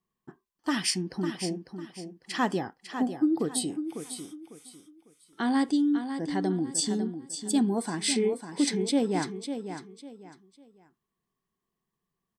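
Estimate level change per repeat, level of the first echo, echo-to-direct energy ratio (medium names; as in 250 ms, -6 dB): -11.0 dB, -9.0 dB, -8.5 dB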